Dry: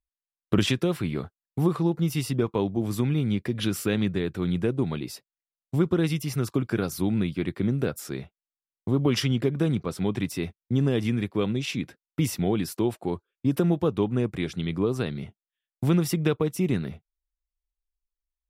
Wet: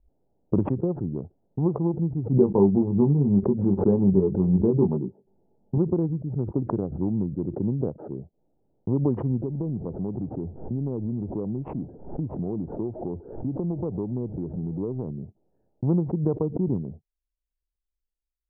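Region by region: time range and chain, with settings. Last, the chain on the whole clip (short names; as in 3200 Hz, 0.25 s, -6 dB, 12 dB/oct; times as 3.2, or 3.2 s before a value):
2.37–5.78 doubler 21 ms -4.5 dB + small resonant body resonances 200/390/850 Hz, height 9 dB, ringing for 50 ms
9.43–15.11 zero-crossing step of -34.5 dBFS + compressor 2.5:1, threshold -25 dBFS
whole clip: Wiener smoothing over 41 samples; elliptic low-pass 950 Hz, stop band 80 dB; backwards sustainer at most 88 dB/s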